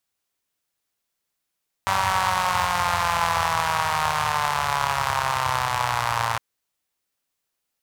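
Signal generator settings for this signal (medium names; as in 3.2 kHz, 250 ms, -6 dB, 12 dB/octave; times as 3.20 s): four-cylinder engine model, changing speed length 4.51 s, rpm 5800, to 3400, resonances 95/960 Hz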